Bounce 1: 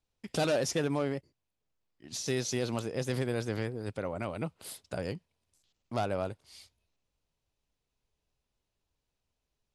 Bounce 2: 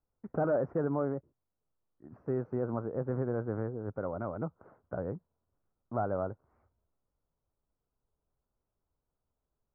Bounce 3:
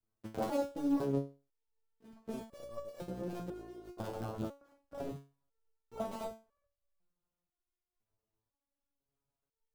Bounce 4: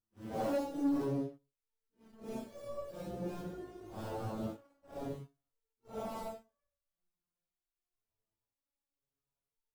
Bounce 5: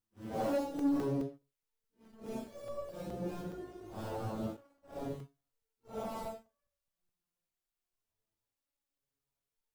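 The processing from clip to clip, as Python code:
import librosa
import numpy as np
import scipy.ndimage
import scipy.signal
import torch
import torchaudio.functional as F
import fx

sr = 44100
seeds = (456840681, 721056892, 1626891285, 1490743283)

y1 = scipy.signal.sosfilt(scipy.signal.ellip(4, 1.0, 60, 1400.0, 'lowpass', fs=sr, output='sos'), x)
y2 = fx.cycle_switch(y1, sr, every=2, mode='muted')
y2 = fx.dynamic_eq(y2, sr, hz=1800.0, q=1.6, threshold_db=-57.0, ratio=4.0, max_db=-7)
y2 = fx.resonator_held(y2, sr, hz=2.0, low_hz=110.0, high_hz=570.0)
y2 = F.gain(torch.from_numpy(y2), 9.5).numpy()
y3 = fx.phase_scramble(y2, sr, seeds[0], window_ms=200)
y3 = fx.leveller(y3, sr, passes=1)
y3 = F.gain(torch.from_numpy(y3), -3.5).numpy()
y4 = fx.buffer_crackle(y3, sr, first_s=0.79, period_s=0.21, block=128, kind='zero')
y4 = F.gain(torch.from_numpy(y4), 1.0).numpy()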